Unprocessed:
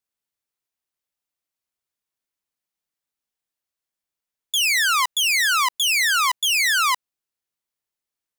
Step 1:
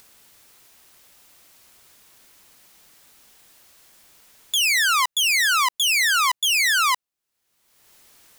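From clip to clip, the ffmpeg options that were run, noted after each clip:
-af "acompressor=mode=upward:threshold=-27dB:ratio=2.5"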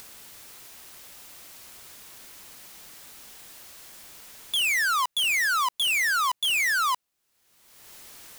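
-af "asoftclip=type=tanh:threshold=-30dB,volume=7dB"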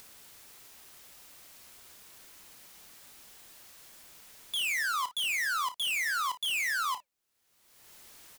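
-filter_complex "[0:a]asplit=2[a][b];[b]aecho=0:1:31|56:0.237|0.15[c];[a][c]amix=inputs=2:normalize=0,flanger=delay=0.3:depth=3.2:regen=-87:speed=1.9:shape=triangular,volume=-2.5dB"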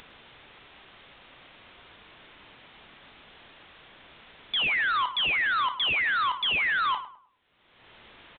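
-filter_complex "[0:a]aresample=8000,asoftclip=type=hard:threshold=-32.5dB,aresample=44100,asplit=2[a][b];[b]adelay=104,lowpass=f=1.5k:p=1,volume=-11.5dB,asplit=2[c][d];[d]adelay=104,lowpass=f=1.5k:p=1,volume=0.35,asplit=2[e][f];[f]adelay=104,lowpass=f=1.5k:p=1,volume=0.35,asplit=2[g][h];[h]adelay=104,lowpass=f=1.5k:p=1,volume=0.35[i];[a][c][e][g][i]amix=inputs=5:normalize=0,volume=8.5dB"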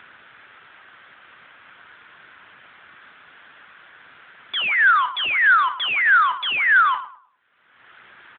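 -af "equalizer=f=1.5k:t=o:w=0.9:g=13,acrusher=bits=4:mode=log:mix=0:aa=0.000001" -ar 8000 -c:a libopencore_amrnb -b:a 12200

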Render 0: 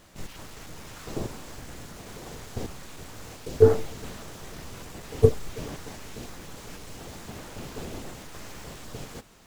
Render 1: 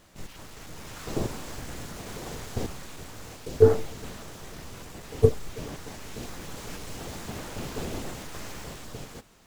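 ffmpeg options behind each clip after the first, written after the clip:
-af "dynaudnorm=f=130:g=13:m=6dB,volume=-2.5dB"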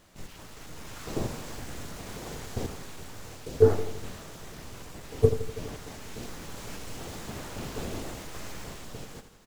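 -af "aecho=1:1:82|164|246|328|410|492:0.282|0.152|0.0822|0.0444|0.024|0.0129,volume=-2dB"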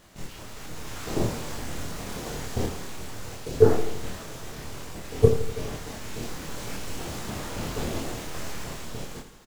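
-filter_complex "[0:a]asplit=2[a][b];[b]adelay=26,volume=-4dB[c];[a][c]amix=inputs=2:normalize=0,volume=3.5dB"

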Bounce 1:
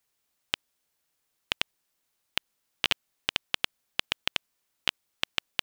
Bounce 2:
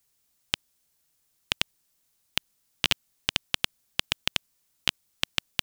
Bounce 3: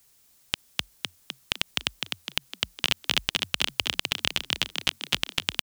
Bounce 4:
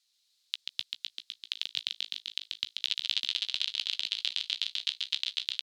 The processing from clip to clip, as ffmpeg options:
-af "bass=f=250:g=8,treble=f=4k:g=7"
-filter_complex "[0:a]asplit=8[a][b][c][d][e][f][g][h];[b]adelay=254,afreqshift=43,volume=-11dB[i];[c]adelay=508,afreqshift=86,volume=-15.3dB[j];[d]adelay=762,afreqshift=129,volume=-19.6dB[k];[e]adelay=1016,afreqshift=172,volume=-23.9dB[l];[f]adelay=1270,afreqshift=215,volume=-28.2dB[m];[g]adelay=1524,afreqshift=258,volume=-32.5dB[n];[h]adelay=1778,afreqshift=301,volume=-36.8dB[o];[a][i][j][k][l][m][n][o]amix=inputs=8:normalize=0,alimiter=level_in=11.5dB:limit=-1dB:release=50:level=0:latency=1,volume=-1dB"
-filter_complex "[0:a]bandpass=f=4k:t=q:w=3.9:csg=0,asplit=2[a][b];[b]adelay=15,volume=-14dB[c];[a][c]amix=inputs=2:normalize=0,asplit=2[d][e];[e]asplit=6[f][g][h][i][j][k];[f]adelay=136,afreqshift=41,volume=-4dB[l];[g]adelay=272,afreqshift=82,volume=-10.9dB[m];[h]adelay=408,afreqshift=123,volume=-17.9dB[n];[i]adelay=544,afreqshift=164,volume=-24.8dB[o];[j]adelay=680,afreqshift=205,volume=-31.7dB[p];[k]adelay=816,afreqshift=246,volume=-38.7dB[q];[l][m][n][o][p][q]amix=inputs=6:normalize=0[r];[d][r]amix=inputs=2:normalize=0"

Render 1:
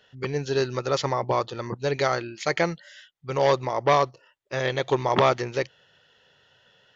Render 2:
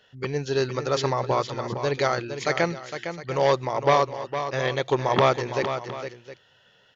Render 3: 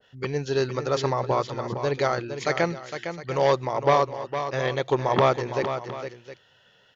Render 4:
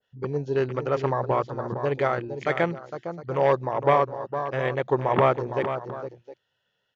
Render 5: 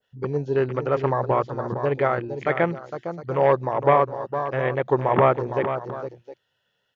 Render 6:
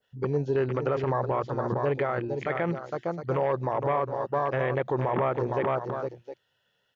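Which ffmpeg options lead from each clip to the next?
-af "aecho=1:1:459|712:0.355|0.158"
-af "adynamicequalizer=threshold=0.0141:dfrequency=1600:dqfactor=0.7:tfrequency=1600:tqfactor=0.7:attack=5:release=100:ratio=0.375:range=2:mode=cutabove:tftype=highshelf"
-af "afwtdn=0.02"
-filter_complex "[0:a]acrossover=split=3000[a][b];[b]acompressor=threshold=-58dB:ratio=4:attack=1:release=60[c];[a][c]amix=inputs=2:normalize=0,volume=2.5dB"
-af "alimiter=limit=-17.5dB:level=0:latency=1:release=42"

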